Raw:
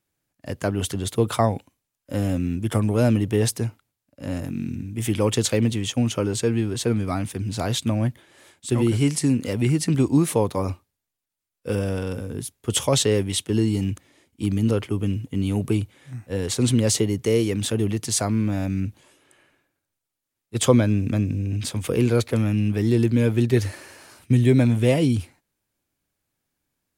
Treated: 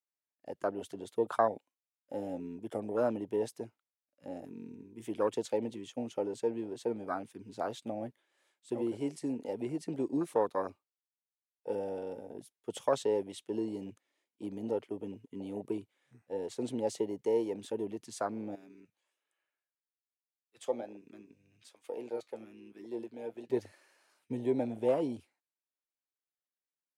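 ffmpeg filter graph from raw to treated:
-filter_complex "[0:a]asettb=1/sr,asplit=3[a][b][c];[a]atrim=end=18.554[d];[b]atrim=start=18.55:end=23.5,asetpts=PTS-STARTPTS,afade=t=in:d=0.004:c=qsin,afade=t=out:st=4.946:d=0.004:c=qsin,highpass=f=490:p=1,flanger=delay=6:depth=3.8:regen=70:speed=1.2:shape=sinusoidal[e];[c]atrim=start=23.496[f];[d][e]acrossfade=d=0.004:c1=hsin:c2=qsin[g];[g][f]acrossfade=d=0.004:c1=qsin:c2=hsin,afwtdn=0.0562,highpass=460,highshelf=f=8.8k:g=-6.5,volume=-4.5dB"

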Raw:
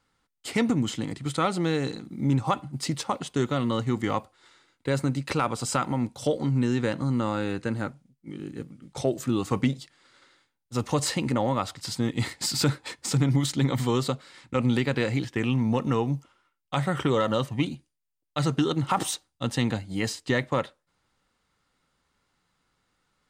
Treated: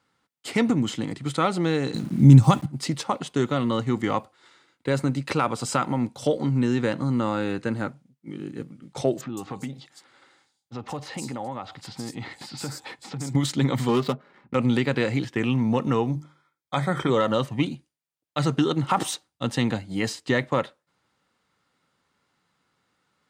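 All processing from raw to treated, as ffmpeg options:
-filter_complex "[0:a]asettb=1/sr,asplit=3[a][b][c];[a]atrim=end=1.944[d];[b]atrim=start=1.94:end=2.66,asetpts=PTS-STARTPTS,afade=t=in:d=0.004:c=qsin,afade=t=out:st=0.716:d=0.004:c=qsin,bass=f=250:g=15,treble=f=4k:g=13,aeval=exprs='val(0)*gte(abs(val(0)),0.00794)':c=same[e];[c]atrim=start=2.656[f];[d][e]acrossfade=d=0.004:c1=hsin:c2=qsin[g];[g][f]acrossfade=d=0.004:c1=qsin:c2=hsin,asettb=1/sr,asplit=3[h][i][j];[h]atrim=end=9.214[k];[i]atrim=start=9.21:end=13.35,asetpts=PTS-STARTPTS,afade=t=in:d=0.004:c=qsin,afade=t=out:st=4.136:d=0.004:c=qsin,equalizer=f=790:t=o:w=0.2:g=9,acompressor=threshold=-34dB:ratio=3:attack=3.2:release=140:knee=1:detection=peak,acrossover=split=4700[l][m];[m]adelay=160[n];[l][n]amix=inputs=2:normalize=0,atrim=end_sample=182574[o];[j]atrim=start=13.346[p];[k][o]acrossfade=d=0.004:c1=hsin:c2=qsin[q];[q][p]acrossfade=d=0.004:c1=qsin:c2=hsin,asettb=1/sr,asplit=3[r][s][t];[r]atrim=end=13.884[u];[s]atrim=start=13.88:end=14.55,asetpts=PTS-STARTPTS,afade=t=in:d=0.004:c=qsin,afade=t=out:st=0.666:d=0.004:c=qsin,adynamicsmooth=sensitivity=7.5:basefreq=920,aecho=1:1:4.9:0.44,atrim=end_sample=29547[v];[t]atrim=start=14.546[w];[u][v]acrossfade=d=0.004:c1=hsin:c2=qsin[x];[x][w]acrossfade=d=0.004:c1=qsin:c2=hsin,asettb=1/sr,asplit=3[y][z][aa];[y]atrim=end=16.114[ab];[z]atrim=start=16.11:end=17.1,asetpts=PTS-STARTPTS,afade=t=in:d=0.004:c=qsin,afade=t=out:st=0.986:d=0.004:c=qsin,asuperstop=centerf=2800:order=20:qfactor=5.8,bandreject=f=50:t=h:w=6,bandreject=f=100:t=h:w=6,bandreject=f=150:t=h:w=6,bandreject=f=200:t=h:w=6,bandreject=f=250:t=h:w=6,bandreject=f=300:t=h:w=6,bandreject=f=350:t=h:w=6,bandreject=f=400:t=h:w=6,bandreject=f=450:t=h:w=6,bandreject=f=500:t=h:w=6[ac];[aa]atrim=start=17.096[ad];[ab][ac]acrossfade=d=0.004:c1=hsin:c2=qsin[ae];[ae][ad]acrossfade=d=0.004:c1=qsin:c2=hsin,highpass=110,highshelf=f=5.3k:g=-4.5,volume=2.5dB"

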